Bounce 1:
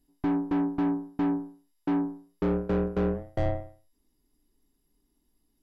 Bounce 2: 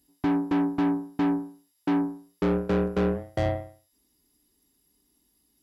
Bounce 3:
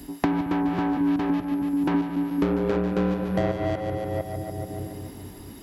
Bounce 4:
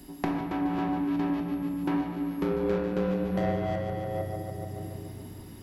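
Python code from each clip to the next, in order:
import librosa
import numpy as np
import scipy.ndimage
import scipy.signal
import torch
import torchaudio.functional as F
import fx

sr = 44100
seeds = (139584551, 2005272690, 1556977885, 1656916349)

y1 = scipy.signal.sosfilt(scipy.signal.butter(2, 60.0, 'highpass', fs=sr, output='sos'), x)
y1 = fx.high_shelf(y1, sr, hz=2200.0, db=9.0)
y1 = y1 * 10.0 ** (2.0 / 20.0)
y2 = fx.reverse_delay(y1, sr, ms=324, wet_db=-5)
y2 = fx.echo_split(y2, sr, split_hz=380.0, low_ms=218, high_ms=144, feedback_pct=52, wet_db=-8.0)
y2 = fx.band_squash(y2, sr, depth_pct=100)
y3 = fx.room_shoebox(y2, sr, seeds[0], volume_m3=540.0, walls='mixed', distance_m=1.0)
y3 = y3 * 10.0 ** (-6.5 / 20.0)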